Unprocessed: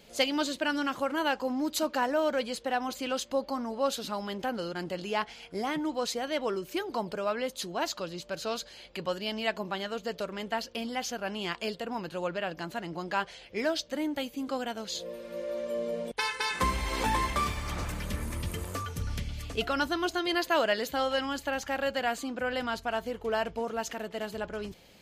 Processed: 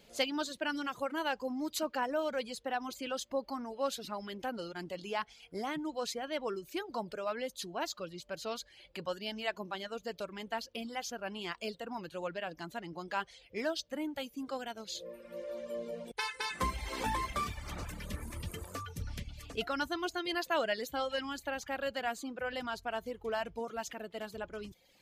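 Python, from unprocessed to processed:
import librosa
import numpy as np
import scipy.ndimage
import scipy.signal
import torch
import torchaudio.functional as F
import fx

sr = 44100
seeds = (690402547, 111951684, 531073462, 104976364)

y = fx.dereverb_blind(x, sr, rt60_s=0.79)
y = y * librosa.db_to_amplitude(-5.0)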